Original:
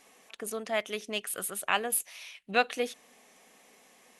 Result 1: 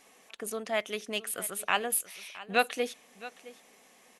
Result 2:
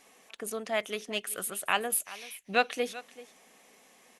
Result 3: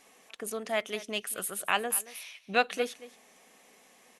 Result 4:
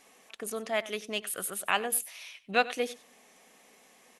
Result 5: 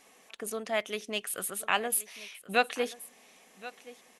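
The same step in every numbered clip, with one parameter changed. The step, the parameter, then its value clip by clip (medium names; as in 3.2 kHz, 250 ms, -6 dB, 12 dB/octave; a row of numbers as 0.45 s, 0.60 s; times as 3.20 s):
delay, time: 666 ms, 385 ms, 225 ms, 95 ms, 1076 ms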